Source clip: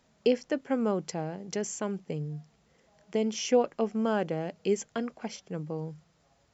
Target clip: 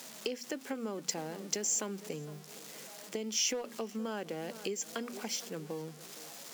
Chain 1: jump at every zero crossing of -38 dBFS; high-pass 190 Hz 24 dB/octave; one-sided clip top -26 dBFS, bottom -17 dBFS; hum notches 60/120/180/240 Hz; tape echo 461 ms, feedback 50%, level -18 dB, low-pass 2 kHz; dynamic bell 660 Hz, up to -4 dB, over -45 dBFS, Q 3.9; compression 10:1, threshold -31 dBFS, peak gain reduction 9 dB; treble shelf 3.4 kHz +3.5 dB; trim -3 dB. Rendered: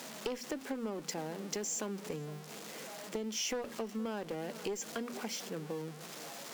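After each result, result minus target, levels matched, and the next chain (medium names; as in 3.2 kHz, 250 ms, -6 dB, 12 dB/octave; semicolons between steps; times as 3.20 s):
one-sided clip: distortion +10 dB; jump at every zero crossing: distortion +6 dB; 8 kHz band -3.0 dB
jump at every zero crossing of -38 dBFS; high-pass 190 Hz 24 dB/octave; one-sided clip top -15.5 dBFS, bottom -17 dBFS; hum notches 60/120/180/240 Hz; tape echo 461 ms, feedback 50%, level -18 dB, low-pass 2 kHz; dynamic bell 660 Hz, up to -4 dB, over -45 dBFS, Q 3.9; compression 10:1, threshold -31 dBFS, peak gain reduction 11.5 dB; treble shelf 3.4 kHz +3.5 dB; trim -3 dB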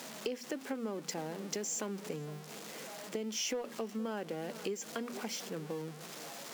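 jump at every zero crossing: distortion +6 dB; 8 kHz band -3.5 dB
jump at every zero crossing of -45 dBFS; high-pass 190 Hz 24 dB/octave; one-sided clip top -15.5 dBFS, bottom -17 dBFS; hum notches 60/120/180/240 Hz; tape echo 461 ms, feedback 50%, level -18 dB, low-pass 2 kHz; dynamic bell 660 Hz, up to -4 dB, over -45 dBFS, Q 3.9; compression 10:1, threshold -31 dBFS, peak gain reduction 11.5 dB; treble shelf 3.4 kHz +3.5 dB; trim -3 dB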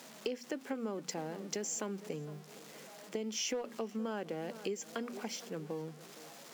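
8 kHz band -4.5 dB
jump at every zero crossing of -45 dBFS; high-pass 190 Hz 24 dB/octave; one-sided clip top -15.5 dBFS, bottom -17 dBFS; hum notches 60/120/180/240 Hz; tape echo 461 ms, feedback 50%, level -18 dB, low-pass 2 kHz; dynamic bell 660 Hz, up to -4 dB, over -45 dBFS, Q 3.9; compression 10:1, threshold -31 dBFS, peak gain reduction 11.5 dB; treble shelf 3.4 kHz +12.5 dB; trim -3 dB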